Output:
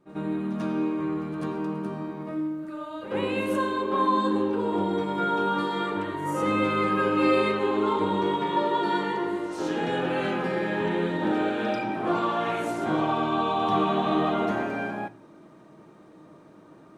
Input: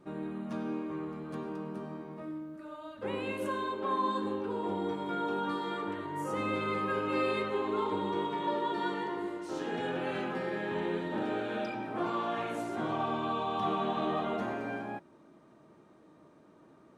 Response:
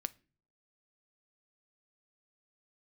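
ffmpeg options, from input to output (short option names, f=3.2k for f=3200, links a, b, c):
-filter_complex "[0:a]asplit=2[a][b];[1:a]atrim=start_sample=2205,adelay=91[c];[b][c]afir=irnorm=-1:irlink=0,volume=14dB[d];[a][d]amix=inputs=2:normalize=0,volume=-5.5dB"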